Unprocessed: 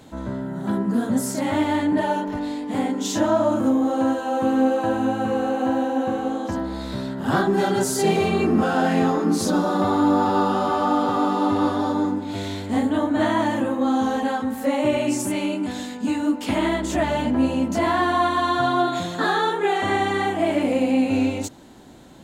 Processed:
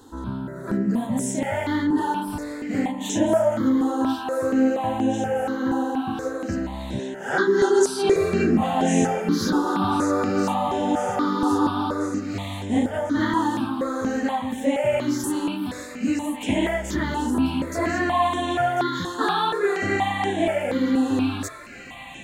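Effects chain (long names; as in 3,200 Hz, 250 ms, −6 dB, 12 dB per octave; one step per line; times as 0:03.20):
0:06.99–0:08.16: loudspeaker in its box 320–9,800 Hz, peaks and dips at 390 Hz +8 dB, 670 Hz −5 dB, 1,700 Hz +5 dB, 6,400 Hz +9 dB
on a send: delay with a high-pass on its return 1,044 ms, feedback 62%, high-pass 1,500 Hz, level −9 dB
on the sum: step-sequenced phaser 4.2 Hz 620–4,600 Hz
level +1.5 dB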